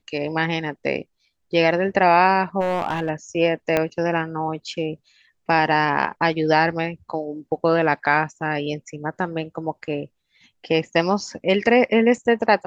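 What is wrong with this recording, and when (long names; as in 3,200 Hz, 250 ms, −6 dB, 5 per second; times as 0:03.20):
0:02.60–0:03.10: clipping −18 dBFS
0:03.77: click −6 dBFS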